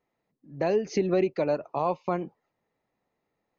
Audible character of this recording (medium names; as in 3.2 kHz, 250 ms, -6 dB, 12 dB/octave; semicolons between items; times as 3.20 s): noise floor -81 dBFS; spectral tilt -4.5 dB/octave